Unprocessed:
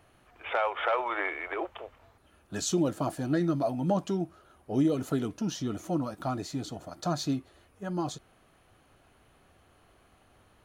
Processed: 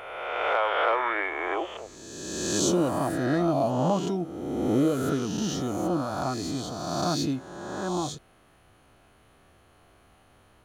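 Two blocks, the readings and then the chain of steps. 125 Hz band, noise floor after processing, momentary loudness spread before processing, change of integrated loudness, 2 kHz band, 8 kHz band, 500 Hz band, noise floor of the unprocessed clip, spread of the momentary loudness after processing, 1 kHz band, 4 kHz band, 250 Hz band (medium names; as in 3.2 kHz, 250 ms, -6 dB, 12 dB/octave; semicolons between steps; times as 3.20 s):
+2.5 dB, -59 dBFS, 12 LU, +4.0 dB, +5.0 dB, +6.5 dB, +5.0 dB, -63 dBFS, 10 LU, +5.5 dB, +6.5 dB, +3.0 dB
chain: reverse spectral sustain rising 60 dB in 1.71 s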